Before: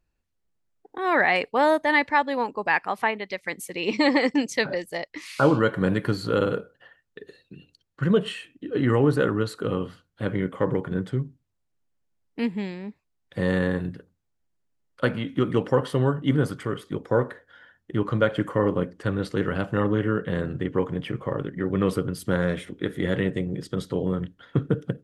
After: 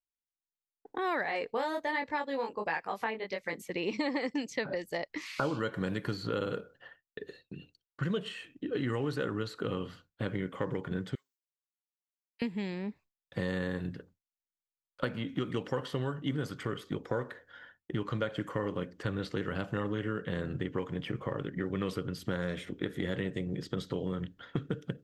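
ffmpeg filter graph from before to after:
ffmpeg -i in.wav -filter_complex "[0:a]asettb=1/sr,asplit=3[link_01][link_02][link_03];[link_01]atrim=end=1.234[link_04];[link_02]atrim=start=1.23:end=3.62,asetpts=PTS-STARTPTS,afade=type=in:duration=0.004:curve=qsin,afade=type=out:start_time=2.386:duration=0.004:curve=qsin,equalizer=frequency=490:width_type=o:width=0.35:gain=5.5,flanger=delay=18.5:depth=3.8:speed=1.3[link_05];[link_03]atrim=start=3.616[link_06];[link_04][link_05]acrossfade=duration=0.004:curve1=hsin:curve2=qsin[link_07];[link_07][link_06]acrossfade=duration=0.004:curve1=qsin:curve2=hsin,asettb=1/sr,asplit=3[link_08][link_09][link_10];[link_08]atrim=end=11.154[link_11];[link_09]atrim=start=11.15:end=12.42,asetpts=PTS-STARTPTS,afade=type=in:duration=0.004:curve=qsin,afade=type=out:start_time=1.266:duration=0.004:curve=qsin,highpass=880,aderivative[link_12];[link_10]atrim=start=12.416[link_13];[link_11][link_12]acrossfade=duration=0.004:curve1=hsin:curve2=qsin[link_14];[link_14][link_13]acrossfade=duration=0.004:curve1=qsin:curve2=hsin,agate=range=-33dB:threshold=-50dB:ratio=3:detection=peak,equalizer=frequency=9700:width=4.1:gain=-15,acrossover=split=1900|4200[link_15][link_16][link_17];[link_15]acompressor=threshold=-32dB:ratio=4[link_18];[link_16]acompressor=threshold=-46dB:ratio=4[link_19];[link_17]acompressor=threshold=-52dB:ratio=4[link_20];[link_18][link_19][link_20]amix=inputs=3:normalize=0" out.wav

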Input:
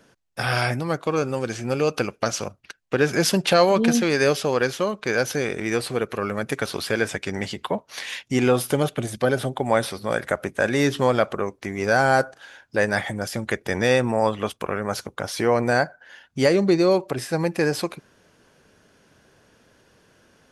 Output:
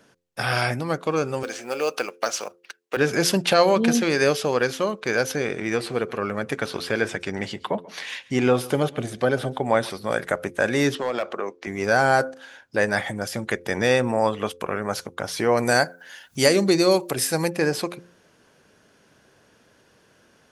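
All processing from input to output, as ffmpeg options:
ffmpeg -i in.wav -filter_complex "[0:a]asettb=1/sr,asplit=3[link_01][link_02][link_03];[link_01]atrim=end=1.434[link_04];[link_02]atrim=start=1.43:end=2.97,asetpts=PTS-STARTPTS,afade=type=in:duration=0.004:curve=qsin,afade=type=out:start_time=1.536:duration=0.004:curve=qsin,highpass=440,acrusher=bits=6:mode=log:mix=0:aa=0.000001[link_05];[link_03]atrim=start=2.966[link_06];[link_04][link_05]acrossfade=duration=0.004:curve1=hsin:curve2=qsin[link_07];[link_07][link_06]acrossfade=duration=0.004:curve1=qsin:curve2=hsin,asettb=1/sr,asplit=3[link_08][link_09][link_10];[link_08]atrim=end=5.324[link_11];[link_09]atrim=start=5.32:end=9.9,asetpts=PTS-STARTPTS,afade=type=in:duration=0.004:curve=qsin,afade=type=out:start_time=4.576:duration=0.004:curve=qsin,highshelf=frequency=7600:gain=-9.5,aecho=1:1:137:0.0944,atrim=end_sample=201978[link_12];[link_10]atrim=start=9.896[link_13];[link_11][link_12]acrossfade=duration=0.004:curve1=hsin:curve2=qsin[link_14];[link_14][link_13]acrossfade=duration=0.004:curve1=qsin:curve2=hsin,asettb=1/sr,asplit=3[link_15][link_16][link_17];[link_15]atrim=end=10.954[link_18];[link_16]atrim=start=10.95:end=11.67,asetpts=PTS-STARTPTS,afade=type=in:duration=0.004:curve=qsin,afade=type=out:start_time=0.716:duration=0.004:curve=qsin,acrossover=split=240 6800:gain=0.126 1 0.141[link_19][link_20][link_21];[link_19][link_20][link_21]amix=inputs=3:normalize=0,asoftclip=type=hard:threshold=-14dB,acompressor=threshold=-21dB:ratio=6:attack=3.2:release=140:knee=1:detection=peak[link_22];[link_17]atrim=start=11.666[link_23];[link_18][link_22]acrossfade=duration=0.004:curve1=hsin:curve2=qsin[link_24];[link_24][link_23]acrossfade=duration=0.004:curve1=qsin:curve2=hsin,asettb=1/sr,asplit=3[link_25][link_26][link_27];[link_25]atrim=end=15.574[link_28];[link_26]atrim=start=15.57:end=17.5,asetpts=PTS-STARTPTS,afade=type=in:duration=0.004:curve=qsin,afade=type=out:start_time=1.926:duration=0.004:curve=qsin,aemphasis=mode=production:type=75kf,acompressor=mode=upward:threshold=-40dB:ratio=2.5:attack=3.2:release=140:knee=2.83:detection=peak[link_29];[link_27]atrim=start=17.496[link_30];[link_28][link_29]acrossfade=duration=0.004:curve1=hsin:curve2=qsin[link_31];[link_31][link_30]acrossfade=duration=0.004:curve1=qsin:curve2=hsin,lowshelf=frequency=69:gain=-8.5,bandreject=frequency=87.36:width_type=h:width=4,bandreject=frequency=174.72:width_type=h:width=4,bandreject=frequency=262.08:width_type=h:width=4,bandreject=frequency=349.44:width_type=h:width=4,bandreject=frequency=436.8:width_type=h:width=4,bandreject=frequency=524.16:width_type=h:width=4" out.wav

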